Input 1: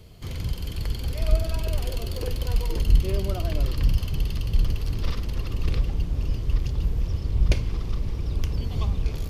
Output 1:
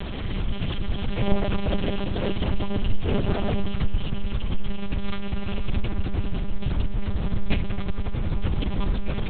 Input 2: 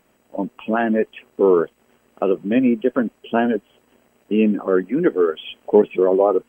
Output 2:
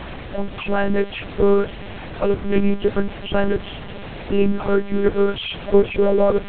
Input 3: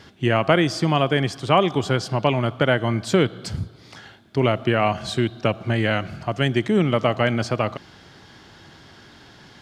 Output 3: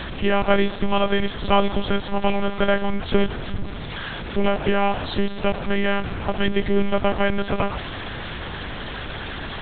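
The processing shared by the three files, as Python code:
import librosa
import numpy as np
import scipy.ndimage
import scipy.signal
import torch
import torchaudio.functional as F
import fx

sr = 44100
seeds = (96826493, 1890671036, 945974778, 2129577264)

y = x + 0.5 * 10.0 ** (-24.0 / 20.0) * np.sign(x)
y = fx.lpc_monotone(y, sr, seeds[0], pitch_hz=200.0, order=8)
y = y * 10.0 ** (-1.0 / 20.0)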